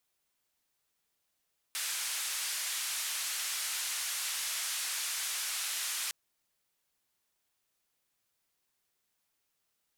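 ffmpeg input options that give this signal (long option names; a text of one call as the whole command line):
ffmpeg -f lavfi -i "anoisesrc=color=white:duration=4.36:sample_rate=44100:seed=1,highpass=frequency=1400,lowpass=frequency=11000,volume=-27.1dB" out.wav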